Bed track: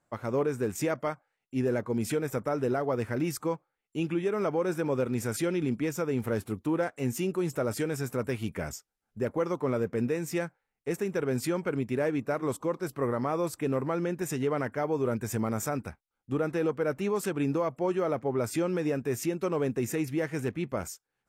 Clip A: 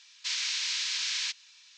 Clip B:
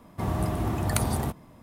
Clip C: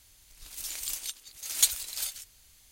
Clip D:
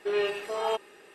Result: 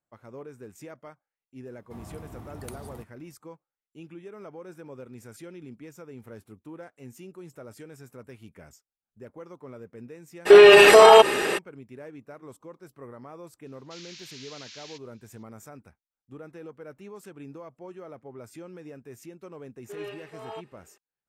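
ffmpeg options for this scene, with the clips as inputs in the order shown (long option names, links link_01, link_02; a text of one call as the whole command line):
ffmpeg -i bed.wav -i cue0.wav -i cue1.wav -i cue2.wav -i cue3.wav -filter_complex "[4:a]asplit=2[link_01][link_02];[0:a]volume=-14.5dB[link_03];[link_01]alimiter=level_in=29.5dB:limit=-1dB:release=50:level=0:latency=1[link_04];[1:a]aresample=16000,aresample=44100[link_05];[link_02]highshelf=frequency=6700:gain=-7.5[link_06];[2:a]atrim=end=1.62,asetpts=PTS-STARTPTS,volume=-16dB,afade=type=in:duration=0.004:curve=hsin,afade=type=out:start_time=1.616:duration=0.004:curve=hsin,adelay=1720[link_07];[link_04]atrim=end=1.14,asetpts=PTS-STARTPTS,volume=-2dB,afade=type=in:duration=0.02,afade=type=out:start_time=1.12:duration=0.02,adelay=10450[link_08];[link_05]atrim=end=1.77,asetpts=PTS-STARTPTS,volume=-14.5dB,afade=type=in:duration=0.004:curve=hsin,afade=type=out:start_time=1.766:duration=0.004:curve=hsin,adelay=13660[link_09];[link_06]atrim=end=1.14,asetpts=PTS-STARTPTS,volume=-11dB,afade=type=in:duration=0.004:curve=hsin,afade=type=out:start_time=1.136:duration=0.004:curve=hsin,adelay=19840[link_10];[link_03][link_07][link_08][link_09][link_10]amix=inputs=5:normalize=0" out.wav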